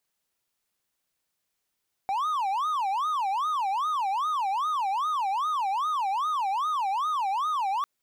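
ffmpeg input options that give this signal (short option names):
-f lavfi -i "aevalsrc='0.075*(1-4*abs(mod((1012.5*t-247.5/(2*PI*2.5)*sin(2*PI*2.5*t))+0.25,1)-0.5))':d=5.75:s=44100"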